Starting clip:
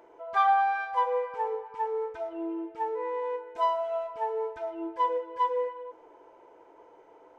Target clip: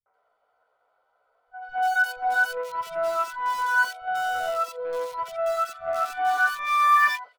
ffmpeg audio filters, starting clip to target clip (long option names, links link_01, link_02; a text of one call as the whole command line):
ffmpeg -i in.wav -filter_complex "[0:a]areverse,asplit=2[link_01][link_02];[link_02]acrusher=bits=4:mix=0:aa=0.000001,volume=-11.5dB[link_03];[link_01][link_03]amix=inputs=2:normalize=0,asetrate=66075,aresample=44100,atempo=0.66742,agate=range=-18dB:threshold=-41dB:ratio=16:detection=peak,acrossover=split=160|2200[link_04][link_05][link_06];[link_05]adelay=60[link_07];[link_06]adelay=140[link_08];[link_04][link_07][link_08]amix=inputs=3:normalize=0,volume=3.5dB" out.wav